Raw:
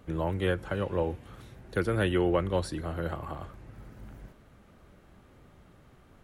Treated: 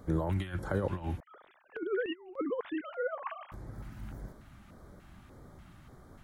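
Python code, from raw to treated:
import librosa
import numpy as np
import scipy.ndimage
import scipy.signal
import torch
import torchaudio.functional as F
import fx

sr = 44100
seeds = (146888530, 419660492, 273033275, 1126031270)

y = fx.sine_speech(x, sr, at=(1.2, 3.52))
y = fx.over_compress(y, sr, threshold_db=-31.0, ratio=-0.5)
y = fx.filter_lfo_notch(y, sr, shape='square', hz=1.7, low_hz=470.0, high_hz=2700.0, q=0.93)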